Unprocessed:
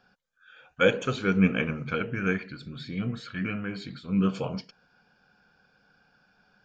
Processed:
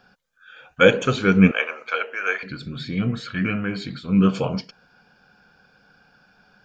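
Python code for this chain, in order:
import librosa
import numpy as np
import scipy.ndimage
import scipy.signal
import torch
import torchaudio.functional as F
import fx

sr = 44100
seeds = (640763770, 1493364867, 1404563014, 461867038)

y = fx.highpass(x, sr, hz=540.0, slope=24, at=(1.51, 2.43))
y = y * 10.0 ** (7.5 / 20.0)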